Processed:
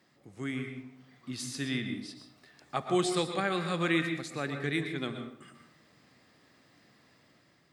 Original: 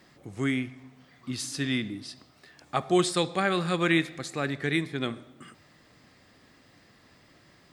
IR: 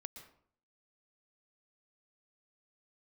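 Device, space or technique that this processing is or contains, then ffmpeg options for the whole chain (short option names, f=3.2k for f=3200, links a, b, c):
far laptop microphone: -filter_complex "[1:a]atrim=start_sample=2205[a];[0:a][a]afir=irnorm=-1:irlink=0,highpass=100,dynaudnorm=f=280:g=5:m=4.5dB,volume=-4dB"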